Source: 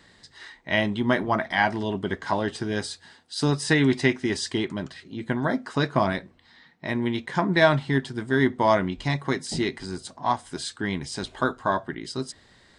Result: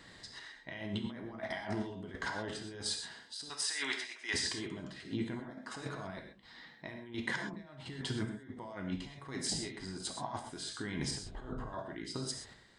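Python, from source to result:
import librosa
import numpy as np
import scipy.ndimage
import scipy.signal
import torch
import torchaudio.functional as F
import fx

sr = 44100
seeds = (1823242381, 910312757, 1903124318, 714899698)

y = fx.highpass(x, sr, hz=1200.0, slope=12, at=(3.48, 4.33), fade=0.02)
y = fx.tilt_eq(y, sr, slope=-4.0, at=(11.19, 11.73))
y = fx.over_compress(y, sr, threshold_db=-33.0, ratio=-1.0)
y = fx.chopper(y, sr, hz=1.4, depth_pct=60, duty_pct=55)
y = fx.rev_gated(y, sr, seeds[0], gate_ms=150, shape='flat', drr_db=3.0)
y = fx.band_squash(y, sr, depth_pct=40, at=(1.06, 1.46))
y = y * 10.0 ** (-7.5 / 20.0)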